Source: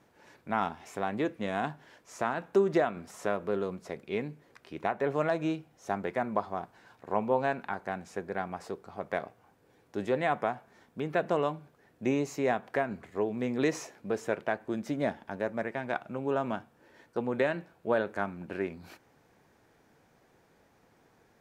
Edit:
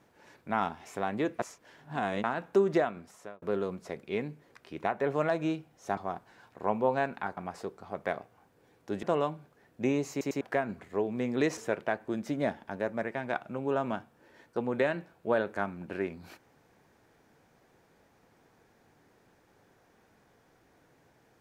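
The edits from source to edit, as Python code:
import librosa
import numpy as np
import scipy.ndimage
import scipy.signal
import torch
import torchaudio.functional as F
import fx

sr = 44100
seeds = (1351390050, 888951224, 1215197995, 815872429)

y = fx.edit(x, sr, fx.reverse_span(start_s=1.39, length_s=0.85),
    fx.fade_out_span(start_s=2.75, length_s=0.67),
    fx.cut(start_s=5.97, length_s=0.47),
    fx.cut(start_s=7.84, length_s=0.59),
    fx.cut(start_s=10.09, length_s=1.16),
    fx.stutter_over(start_s=12.33, slice_s=0.1, count=3),
    fx.cut(start_s=13.79, length_s=0.38), tone=tone)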